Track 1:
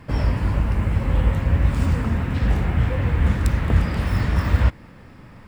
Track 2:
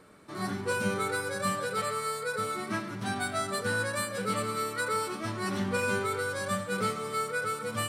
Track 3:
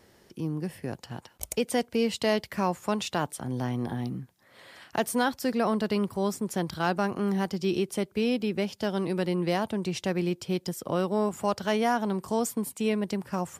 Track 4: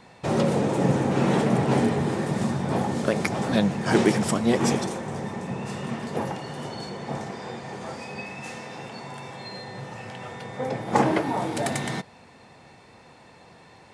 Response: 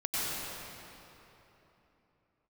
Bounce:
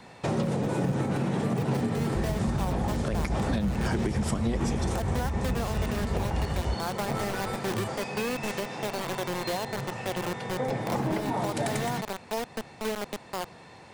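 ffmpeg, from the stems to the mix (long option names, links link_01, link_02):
-filter_complex "[0:a]adelay=2050,volume=-11dB[link_01];[1:a]volume=-6.5dB[link_02];[2:a]bandpass=frequency=740:width_type=q:width=0.79:csg=0,acrusher=bits=4:mix=0:aa=0.000001,volume=0dB[link_03];[3:a]volume=1.5dB[link_04];[link_01][link_02]amix=inputs=2:normalize=0,asubboost=boost=5:cutoff=210,acompressor=threshold=-26dB:ratio=6,volume=0dB[link_05];[link_03][link_04][link_05]amix=inputs=3:normalize=0,acrossover=split=190[link_06][link_07];[link_07]acompressor=threshold=-26dB:ratio=6[link_08];[link_06][link_08]amix=inputs=2:normalize=0,alimiter=limit=-18.5dB:level=0:latency=1:release=105"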